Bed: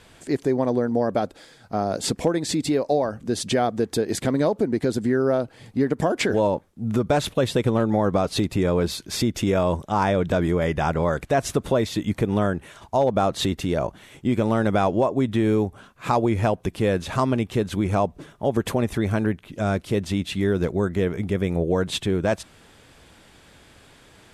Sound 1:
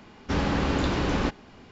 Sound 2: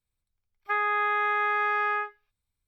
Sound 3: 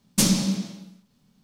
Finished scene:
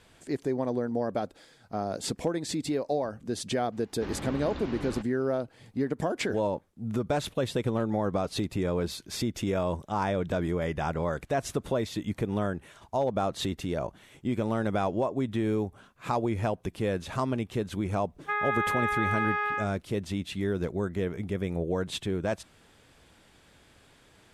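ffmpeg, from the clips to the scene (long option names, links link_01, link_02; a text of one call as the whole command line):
ffmpeg -i bed.wav -i cue0.wav -i cue1.wav -filter_complex "[0:a]volume=-7.5dB[link_01];[1:a]acrossover=split=5200[link_02][link_03];[link_03]acompressor=threshold=-55dB:ratio=4:attack=1:release=60[link_04];[link_02][link_04]amix=inputs=2:normalize=0,atrim=end=1.71,asetpts=PTS-STARTPTS,volume=-13dB,afade=type=in:duration=0.004:curve=hsin,afade=type=out:start_time=1.706:duration=0.004:curve=hsin,adelay=3720[link_05];[2:a]atrim=end=2.67,asetpts=PTS-STARTPTS,volume=-3dB,afade=type=in:duration=0.004:curve=hsin,afade=type=out:start_time=2.666:duration=0.004:curve=hsin,adelay=17590[link_06];[link_01][link_05][link_06]amix=inputs=3:normalize=0" out.wav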